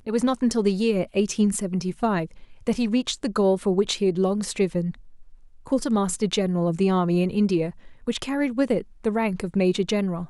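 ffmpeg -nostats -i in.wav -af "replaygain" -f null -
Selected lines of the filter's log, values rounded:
track_gain = +4.2 dB
track_peak = 0.234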